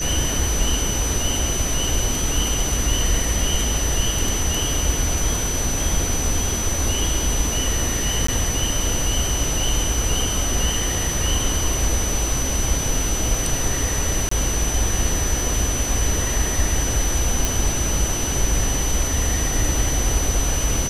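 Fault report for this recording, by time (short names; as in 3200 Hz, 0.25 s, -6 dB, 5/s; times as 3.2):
tone 6000 Hz -25 dBFS
8.27–8.28 gap 14 ms
14.29–14.31 gap 24 ms
17.45 pop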